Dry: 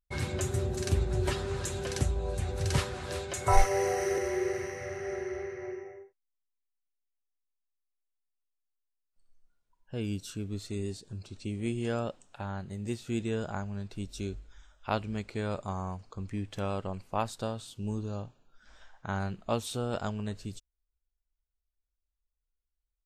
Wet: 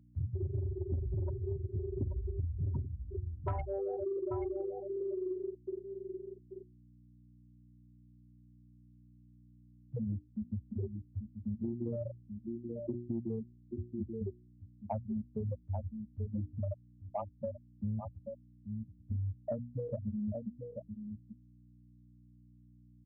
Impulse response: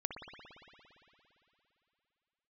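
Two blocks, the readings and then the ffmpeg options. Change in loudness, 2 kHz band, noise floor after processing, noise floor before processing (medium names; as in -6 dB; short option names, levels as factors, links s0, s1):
-5.5 dB, under -25 dB, -61 dBFS, -84 dBFS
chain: -filter_complex "[0:a]afftfilt=real='re*gte(hypot(re,im),0.158)':imag='im*gte(hypot(re,im),0.158)':win_size=1024:overlap=0.75,bandreject=f=60:t=h:w=6,bandreject=f=120:t=h:w=6,bandreject=f=180:t=h:w=6,bandreject=f=240:t=h:w=6,bandreject=f=300:t=h:w=6,bandreject=f=360:t=h:w=6,aecho=1:1:3.3:0.34,aeval=exprs='val(0)+0.000447*(sin(2*PI*60*n/s)+sin(2*PI*2*60*n/s)/2+sin(2*PI*3*60*n/s)/3+sin(2*PI*4*60*n/s)/4+sin(2*PI*5*60*n/s)/5)':c=same,aecho=1:1:834:0.224,acrossover=split=150|3000[s0][s1][s2];[s1]acompressor=threshold=0.00316:ratio=2[s3];[s0][s3][s2]amix=inputs=3:normalize=0,adynamicequalizer=threshold=0.00316:dfrequency=730:dqfactor=2.1:tfrequency=730:tqfactor=2.1:attack=5:release=100:ratio=0.375:range=3:mode=cutabove:tftype=bell,highpass=f=74:w=0.5412,highpass=f=74:w=1.3066,asoftclip=type=tanh:threshold=0.0376,acompressor=threshold=0.00708:ratio=6,volume=3.35"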